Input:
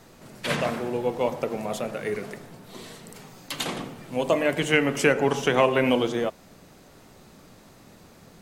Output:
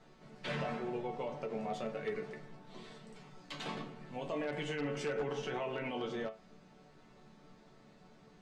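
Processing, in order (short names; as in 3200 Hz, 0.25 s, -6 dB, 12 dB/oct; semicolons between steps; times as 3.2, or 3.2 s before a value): limiter -18 dBFS, peak gain reduction 11.5 dB; resonator bank D3 major, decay 0.2 s; wavefolder -32.5 dBFS; air absorption 120 m; ending taper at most 200 dB/s; gain +4 dB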